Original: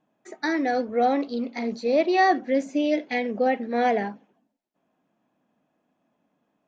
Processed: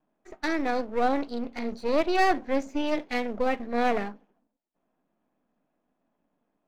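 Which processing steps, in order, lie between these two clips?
half-wave gain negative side -12 dB; bell 100 Hz -13.5 dB 0.46 oct; mismatched tape noise reduction decoder only

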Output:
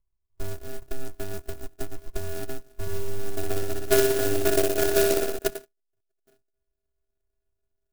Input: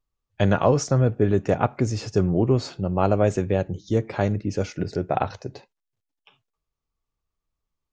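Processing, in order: tracing distortion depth 0.022 ms; dynamic EQ 340 Hz, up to +5 dB, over -40 dBFS, Q 6; compressor 4:1, threshold -27 dBFS, peak gain reduction 12.5 dB; low-pass sweep 160 Hz -> 350 Hz, 3.12–4.02; robotiser 397 Hz; sample-and-hold 42×; 2.81–5.39 flutter echo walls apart 10.4 m, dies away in 1.2 s; clock jitter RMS 0.09 ms; gain +5 dB

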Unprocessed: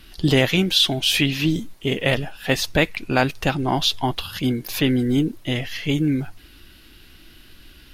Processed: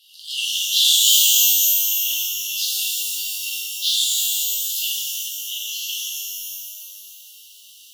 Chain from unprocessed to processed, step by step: brick-wall FIR high-pass 2700 Hz; shimmer reverb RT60 2.4 s, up +12 st, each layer -2 dB, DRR -7.5 dB; gain -3.5 dB

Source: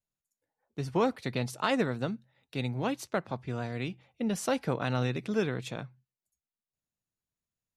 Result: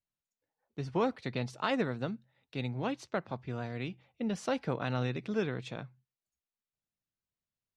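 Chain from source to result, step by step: LPF 5400 Hz 12 dB/oct; gain -3 dB

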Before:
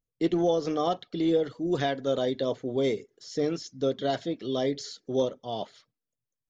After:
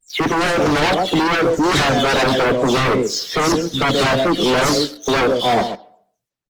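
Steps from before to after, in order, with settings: spectral delay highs early, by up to 0.202 s; vibrato 2.4 Hz 74 cents; echo 0.13 s -13 dB; sample leveller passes 2; on a send at -20.5 dB: reverb RT60 0.70 s, pre-delay 3 ms; on the sum: sine folder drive 11 dB, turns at -12 dBFS; Opus 20 kbps 48000 Hz

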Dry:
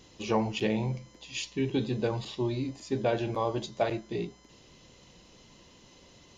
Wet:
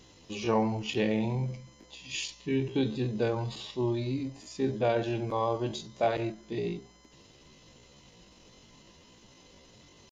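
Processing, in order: tempo 0.63×

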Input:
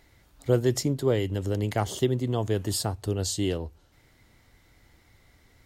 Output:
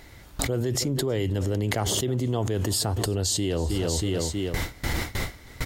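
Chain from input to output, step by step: gate with hold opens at -47 dBFS; on a send: feedback echo 0.319 s, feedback 50%, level -22.5 dB; on the sum: fast leveller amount 100%; gain -7.5 dB

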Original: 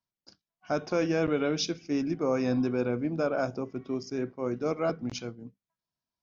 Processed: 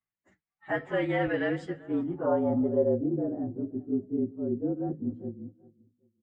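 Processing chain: inharmonic rescaling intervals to 112%; feedback echo 0.39 s, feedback 31%, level -21 dB; low-pass sweep 2100 Hz -> 310 Hz, 1.51–3.36

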